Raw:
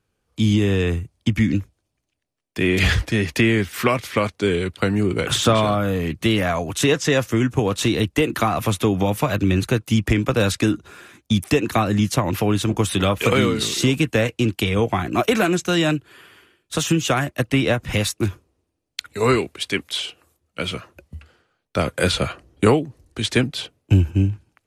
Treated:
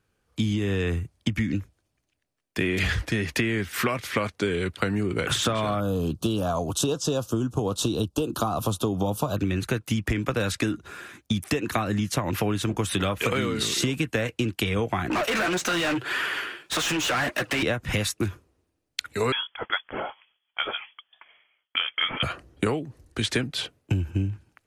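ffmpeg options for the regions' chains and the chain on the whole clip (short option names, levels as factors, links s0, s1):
-filter_complex "[0:a]asettb=1/sr,asplit=3[s0][s1][s2];[s0]atrim=end=5.804[s3];[s1]atrim=start=5.8:end=9.37,asetpts=PTS-STARTPTS,afade=t=in:d=0.004:c=qsin,afade=t=out:st=3.566:d=0.004:c=qsin,asoftclip=type=hard:threshold=0.335,asuperstop=centerf=2000:order=4:qfactor=0.96[s4];[s2]atrim=start=9.366[s5];[s3][s4]acrossfade=d=0.004:c1=hsin:c2=qsin[s6];[s6][s5]acrossfade=d=0.004:c1=qsin:c2=hsin,asettb=1/sr,asplit=3[s7][s8][s9];[s7]atrim=end=15.104[s10];[s8]atrim=start=15.1:end=17.63,asetpts=PTS-STARTPTS,afade=t=in:d=0.004:c=qsin,afade=t=out:st=2.526:d=0.004:c=qsin,acompressor=threshold=0.0501:ratio=10:attack=3.2:release=140:knee=1:detection=peak,flanger=delay=3:depth=7.6:regen=34:speed=1.8:shape=triangular,asplit=2[s11][s12];[s12]highpass=f=720:p=1,volume=39.8,asoftclip=type=tanh:threshold=0.15[s13];[s11][s13]amix=inputs=2:normalize=0,lowpass=f=3800:p=1,volume=0.501[s14];[s9]atrim=start=17.626[s15];[s10][s14]acrossfade=d=0.004:c1=hsin:c2=qsin[s16];[s16][s15]acrossfade=d=0.004:c1=qsin:c2=hsin,asettb=1/sr,asplit=3[s17][s18][s19];[s17]atrim=end=19.324[s20];[s18]atrim=start=19.32:end=22.23,asetpts=PTS-STARTPTS,afade=t=in:d=0.004:c=qsin,afade=t=out:st=2.906:d=0.004:c=qsin,highpass=f=340:w=0.5412,highpass=f=340:w=1.3066,lowpass=f=3100:t=q:w=0.5098,lowpass=f=3100:t=q:w=0.6013,lowpass=f=3100:t=q:w=0.9,lowpass=f=3100:t=q:w=2.563,afreqshift=-3700[s21];[s19]atrim=start=22.226[s22];[s20][s21]acrossfade=d=0.004:c1=hsin:c2=qsin[s23];[s23][s22]acrossfade=d=0.004:c1=qsin:c2=hsin,equalizer=f=1600:t=o:w=0.77:g=3.5,acompressor=threshold=0.0794:ratio=6"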